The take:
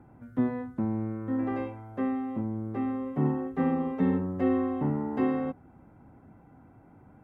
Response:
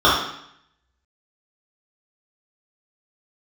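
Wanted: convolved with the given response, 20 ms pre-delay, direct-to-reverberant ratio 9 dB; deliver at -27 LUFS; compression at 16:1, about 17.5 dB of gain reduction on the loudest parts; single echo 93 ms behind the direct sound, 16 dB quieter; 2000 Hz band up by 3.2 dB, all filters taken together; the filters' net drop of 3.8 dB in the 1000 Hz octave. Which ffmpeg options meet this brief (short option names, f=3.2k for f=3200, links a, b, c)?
-filter_complex "[0:a]equalizer=f=1k:t=o:g=-6.5,equalizer=f=2k:t=o:g=5.5,acompressor=threshold=-39dB:ratio=16,aecho=1:1:93:0.158,asplit=2[a][b];[1:a]atrim=start_sample=2205,adelay=20[c];[b][c]afir=irnorm=-1:irlink=0,volume=-34.5dB[d];[a][d]amix=inputs=2:normalize=0,volume=17.5dB"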